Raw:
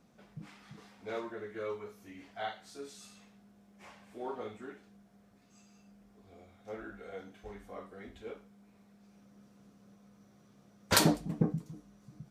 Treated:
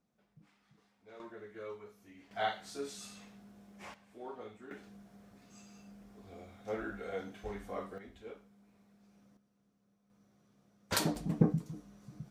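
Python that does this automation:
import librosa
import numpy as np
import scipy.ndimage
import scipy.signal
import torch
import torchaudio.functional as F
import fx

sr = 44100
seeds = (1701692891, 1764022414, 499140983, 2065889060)

y = fx.gain(x, sr, db=fx.steps((0.0, -15.5), (1.2, -6.5), (2.31, 4.5), (3.94, -6.0), (4.71, 5.0), (7.98, -4.0), (9.37, -15.0), (10.1, -7.0), (11.16, 2.5)))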